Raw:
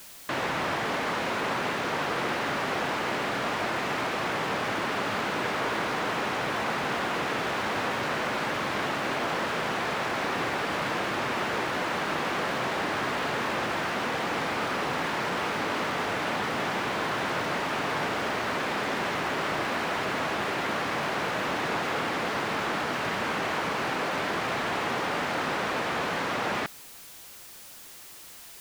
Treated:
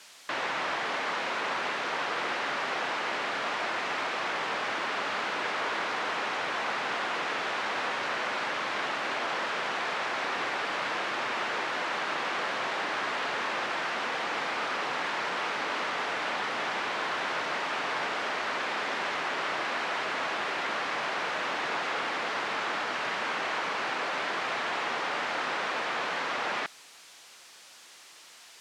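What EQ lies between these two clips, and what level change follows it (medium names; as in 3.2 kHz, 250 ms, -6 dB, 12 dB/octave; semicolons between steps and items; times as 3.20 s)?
high-pass 290 Hz 6 dB/octave; low-pass 6.5 kHz 12 dB/octave; bass shelf 440 Hz -8.5 dB; 0.0 dB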